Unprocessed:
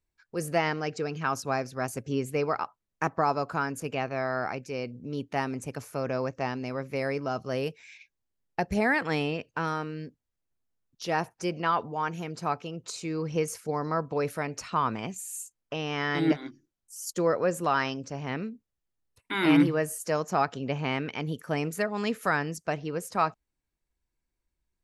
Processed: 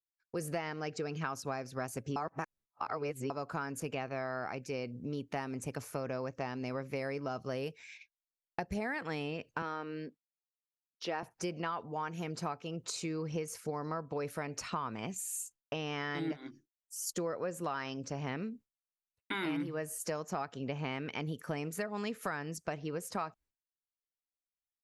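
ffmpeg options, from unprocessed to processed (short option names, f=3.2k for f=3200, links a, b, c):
-filter_complex "[0:a]asettb=1/sr,asplit=3[a][b][c];[a]atrim=end=9.624[d];[b]atrim=start=9.62:end=11.23,asetpts=PTS-STARTPTS,afade=t=in:d=0.004:c=qsin,afade=t=out:st=1.606:d=0.004:c=qsin,acrossover=split=190 5000:gain=0.0794 1 0.158[e][f][g];[e][f][g]amix=inputs=3:normalize=0[h];[c]atrim=start=11.226[i];[d][h]acrossfade=d=0.004:c1=hsin:c2=qsin[j];[j][i]acrossfade=d=0.004:c1=qsin:c2=hsin,asplit=3[k][l][m];[k]atrim=end=2.162[n];[l]atrim=start=2.158:end=3.302,asetpts=PTS-STARTPTS,areverse[o];[m]atrim=start=3.298[p];[n][o]acrossfade=d=0.004:c1=hsin:c2=hsin[q];[q][p]acrossfade=d=0.004:c1=hsin:c2=hsin,agate=range=-33dB:threshold=-47dB:ratio=3:detection=peak,acompressor=threshold=-34dB:ratio=6"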